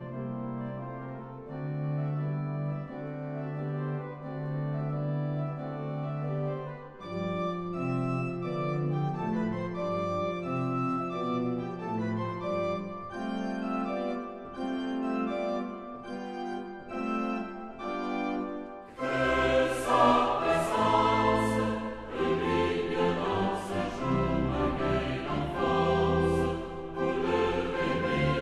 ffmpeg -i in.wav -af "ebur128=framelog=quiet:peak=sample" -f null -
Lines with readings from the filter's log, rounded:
Integrated loudness:
  I:         -30.7 LUFS
  Threshold: -40.8 LUFS
Loudness range:
  LRA:         8.2 LU
  Threshold: -50.8 LUFS
  LRA low:   -34.7 LUFS
  LRA high:  -26.5 LUFS
Sample peak:
  Peak:      -10.2 dBFS